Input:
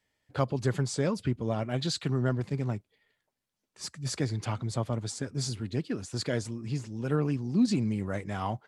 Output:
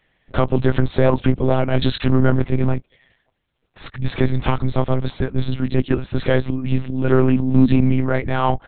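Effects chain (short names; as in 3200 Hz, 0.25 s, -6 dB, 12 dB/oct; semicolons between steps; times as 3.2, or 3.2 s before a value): 0.97–1.4 bell 730 Hz +12.5 dB 0.66 oct; in parallel at -4 dB: hard clip -25 dBFS, distortion -11 dB; on the sum: monotone LPC vocoder at 8 kHz 130 Hz; maximiser +12 dB; gain -1.5 dB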